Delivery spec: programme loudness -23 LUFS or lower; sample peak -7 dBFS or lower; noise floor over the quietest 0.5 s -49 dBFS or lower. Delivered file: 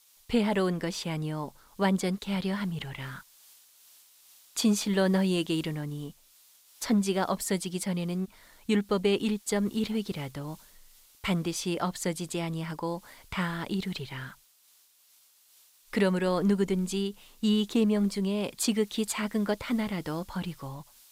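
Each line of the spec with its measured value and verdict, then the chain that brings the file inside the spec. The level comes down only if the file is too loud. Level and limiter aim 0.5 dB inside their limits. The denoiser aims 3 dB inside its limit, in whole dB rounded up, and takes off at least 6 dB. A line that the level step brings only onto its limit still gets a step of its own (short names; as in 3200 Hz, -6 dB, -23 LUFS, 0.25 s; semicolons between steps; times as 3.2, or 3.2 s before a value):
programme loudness -30.0 LUFS: OK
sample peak -15.0 dBFS: OK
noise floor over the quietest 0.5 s -63 dBFS: OK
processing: none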